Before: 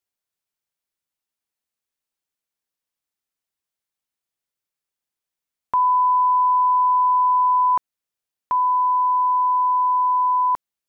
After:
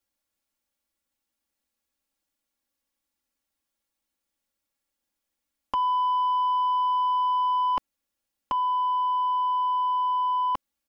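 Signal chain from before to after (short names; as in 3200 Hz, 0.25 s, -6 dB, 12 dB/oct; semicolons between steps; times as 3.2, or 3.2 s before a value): low shelf 490 Hz +6.5 dB; comb 3.6 ms, depth 96%; soft clip -19.5 dBFS, distortion -21 dB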